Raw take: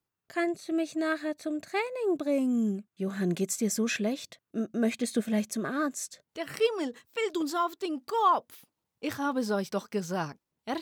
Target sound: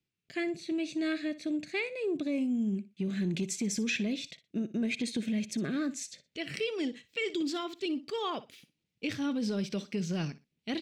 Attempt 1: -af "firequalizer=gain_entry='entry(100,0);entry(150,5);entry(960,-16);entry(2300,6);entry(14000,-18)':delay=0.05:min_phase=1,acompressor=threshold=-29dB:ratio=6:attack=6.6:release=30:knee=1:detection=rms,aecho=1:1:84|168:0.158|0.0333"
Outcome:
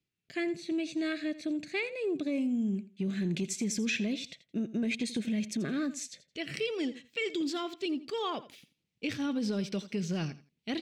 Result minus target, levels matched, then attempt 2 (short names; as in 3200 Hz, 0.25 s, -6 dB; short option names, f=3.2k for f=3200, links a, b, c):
echo 24 ms late
-af "firequalizer=gain_entry='entry(100,0);entry(150,5);entry(960,-16);entry(2300,6);entry(14000,-18)':delay=0.05:min_phase=1,acompressor=threshold=-29dB:ratio=6:attack=6.6:release=30:knee=1:detection=rms,aecho=1:1:60|120:0.158|0.0333"